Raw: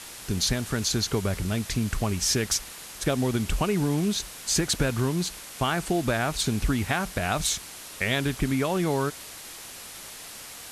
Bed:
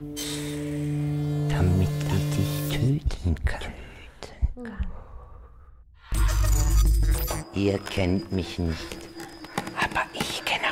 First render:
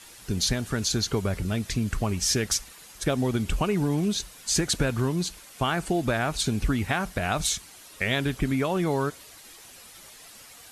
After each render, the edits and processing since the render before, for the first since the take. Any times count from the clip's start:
broadband denoise 9 dB, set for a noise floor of −42 dBFS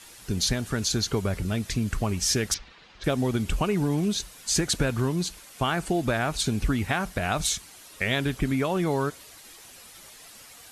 0:02.54–0:03.04: low-pass filter 4,100 Hz 24 dB per octave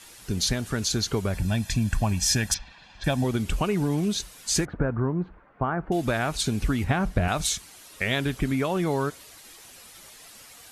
0:01.34–0:03.24: comb filter 1.2 ms
0:04.65–0:05.92: low-pass filter 1,500 Hz 24 dB per octave
0:06.84–0:07.28: spectral tilt −2.5 dB per octave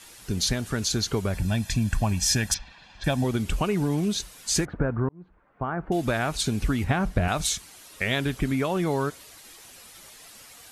0:05.09–0:05.91: fade in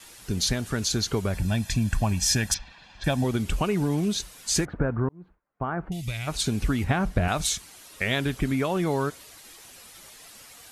noise gate with hold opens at −47 dBFS
0:05.89–0:06.28: gain on a spectral selection 200–1,900 Hz −18 dB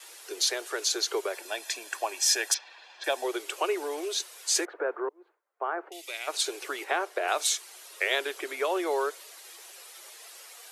Butterworth high-pass 350 Hz 72 dB per octave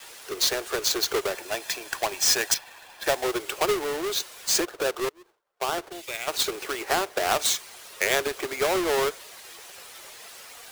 each half-wave held at its own peak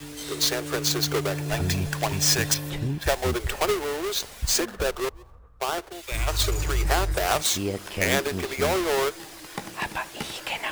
mix in bed −5 dB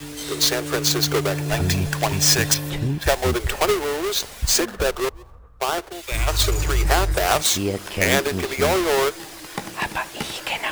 level +4.5 dB

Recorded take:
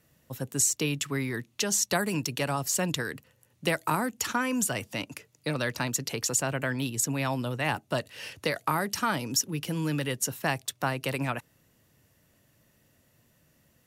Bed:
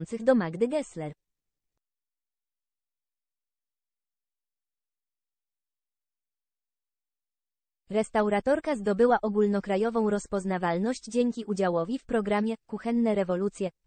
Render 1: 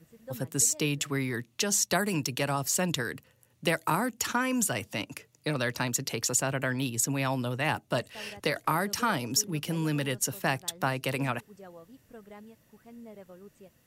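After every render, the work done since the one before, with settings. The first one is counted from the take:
mix in bed −22 dB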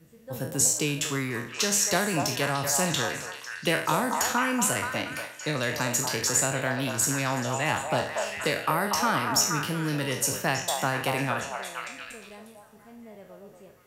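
peak hold with a decay on every bin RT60 0.50 s
on a send: echo through a band-pass that steps 237 ms, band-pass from 790 Hz, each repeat 0.7 octaves, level −1 dB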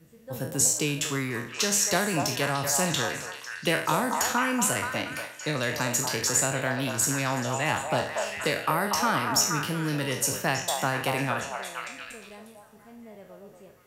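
no processing that can be heard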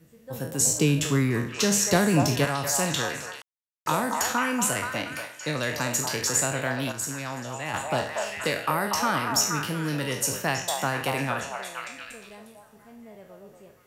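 0:00.67–0:02.45: low-shelf EQ 420 Hz +10.5 dB
0:03.42–0:03.86: silence
0:06.92–0:07.74: clip gain −6 dB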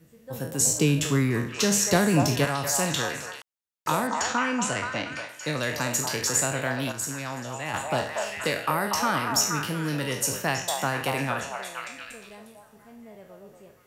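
0:04.07–0:05.29: low-pass filter 7,100 Hz 24 dB per octave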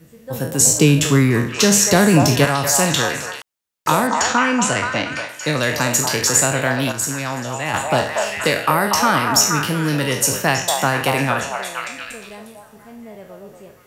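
level +9 dB
brickwall limiter −2 dBFS, peak gain reduction 2.5 dB

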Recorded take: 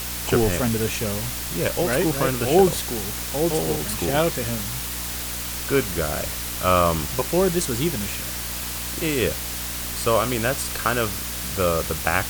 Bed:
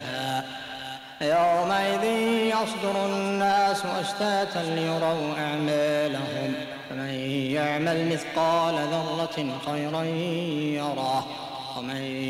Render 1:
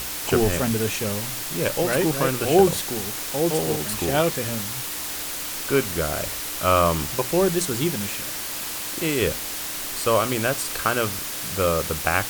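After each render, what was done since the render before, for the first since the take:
mains-hum notches 60/120/180/240 Hz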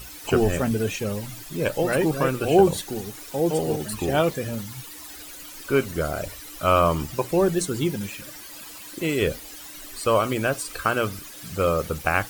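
broadband denoise 14 dB, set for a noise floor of −31 dBFS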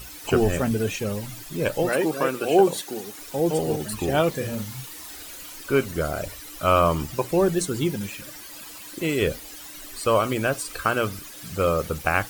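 0:01.89–0:03.19: high-pass filter 250 Hz
0:04.30–0:05.56: double-tracking delay 38 ms −6 dB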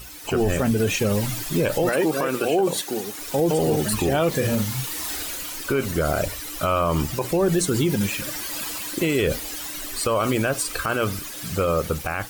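automatic gain control gain up to 11 dB
brickwall limiter −12.5 dBFS, peak gain reduction 11 dB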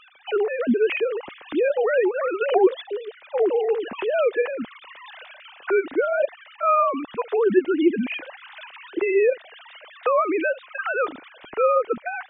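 three sine waves on the formant tracks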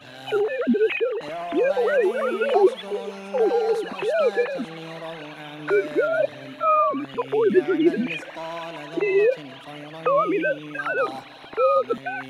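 mix in bed −10.5 dB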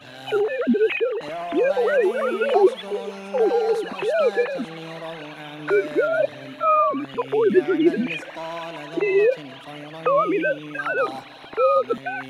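level +1 dB

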